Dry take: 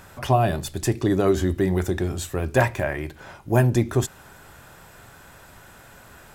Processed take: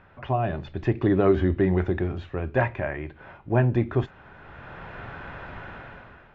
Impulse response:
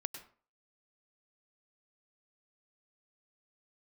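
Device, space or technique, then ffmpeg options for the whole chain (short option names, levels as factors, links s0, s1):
action camera in a waterproof case: -af "lowpass=f=2800:w=0.5412,lowpass=f=2800:w=1.3066,dynaudnorm=f=140:g=9:m=6.68,volume=0.447" -ar 16000 -c:a aac -b:a 48k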